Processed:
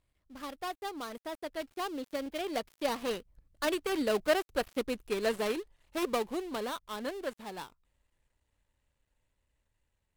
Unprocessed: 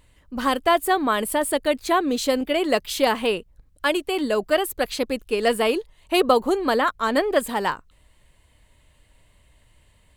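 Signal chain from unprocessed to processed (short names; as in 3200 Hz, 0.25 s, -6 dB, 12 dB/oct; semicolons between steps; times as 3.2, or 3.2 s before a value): switching dead time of 0.18 ms; Doppler pass-by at 4.23, 22 m/s, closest 21 m; gain -6.5 dB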